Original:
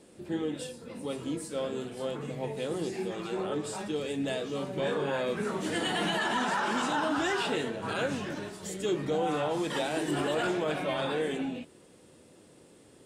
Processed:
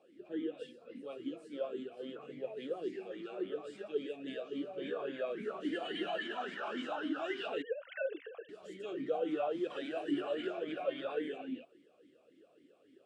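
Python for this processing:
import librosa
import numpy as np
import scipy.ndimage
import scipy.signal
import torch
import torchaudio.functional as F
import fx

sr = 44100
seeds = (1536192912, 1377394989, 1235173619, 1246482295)

y = fx.sine_speech(x, sr, at=(7.62, 8.49))
y = fx.vowel_sweep(y, sr, vowels='a-i', hz=3.6)
y = y * librosa.db_to_amplitude(2.5)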